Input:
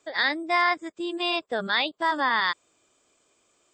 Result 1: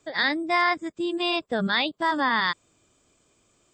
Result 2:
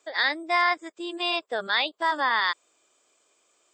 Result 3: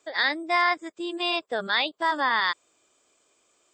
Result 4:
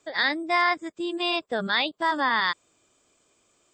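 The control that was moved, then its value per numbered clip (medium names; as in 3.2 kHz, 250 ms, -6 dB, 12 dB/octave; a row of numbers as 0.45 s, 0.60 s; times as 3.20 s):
tone controls, bass: +14 dB, -15 dB, -6 dB, +5 dB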